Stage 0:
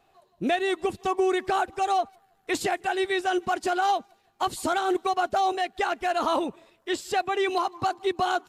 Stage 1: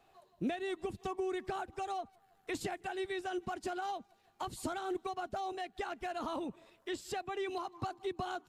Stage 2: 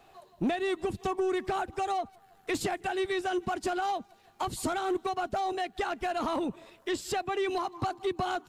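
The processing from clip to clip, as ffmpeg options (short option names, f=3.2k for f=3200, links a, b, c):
-filter_complex "[0:a]acrossover=split=230[a][b];[b]acompressor=threshold=-40dB:ratio=2.5[c];[a][c]amix=inputs=2:normalize=0,volume=-3dB"
-af "asoftclip=type=tanh:threshold=-31dB,volume=9dB"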